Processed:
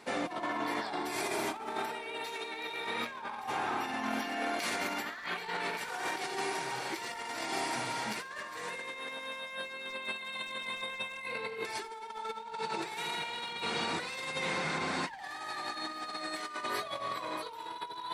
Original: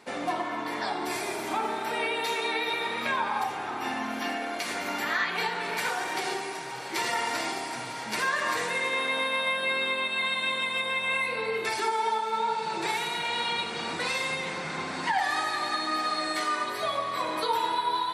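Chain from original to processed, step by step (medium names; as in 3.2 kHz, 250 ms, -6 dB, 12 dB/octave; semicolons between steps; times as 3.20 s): overload inside the chain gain 22.5 dB; Schroeder reverb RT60 3.2 s, combs from 29 ms, DRR 17.5 dB; compressor with a negative ratio -33 dBFS, ratio -0.5; trim -3.5 dB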